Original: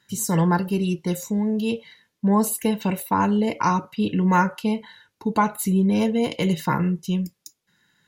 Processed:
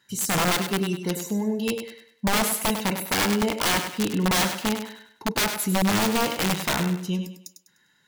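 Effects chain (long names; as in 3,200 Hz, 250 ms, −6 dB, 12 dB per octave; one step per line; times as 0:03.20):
low-shelf EQ 160 Hz −8 dB
wrap-around overflow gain 17 dB
on a send: feedback echo with a high-pass in the loop 100 ms, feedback 35%, high-pass 160 Hz, level −8 dB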